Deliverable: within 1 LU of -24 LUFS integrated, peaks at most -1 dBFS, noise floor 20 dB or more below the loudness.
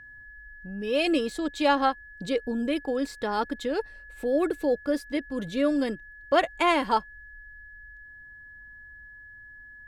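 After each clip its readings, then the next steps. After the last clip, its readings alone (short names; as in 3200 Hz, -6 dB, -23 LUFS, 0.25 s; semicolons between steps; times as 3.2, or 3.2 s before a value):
steady tone 1700 Hz; tone level -45 dBFS; loudness -27.0 LUFS; peak -8.0 dBFS; loudness target -24.0 LUFS
-> notch 1700 Hz, Q 30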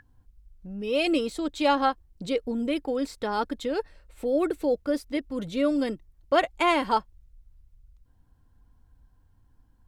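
steady tone none; loudness -27.0 LUFS; peak -8.0 dBFS; loudness target -24.0 LUFS
-> gain +3 dB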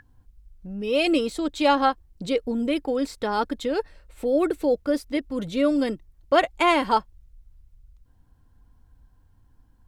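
loudness -24.0 LUFS; peak -5.0 dBFS; noise floor -59 dBFS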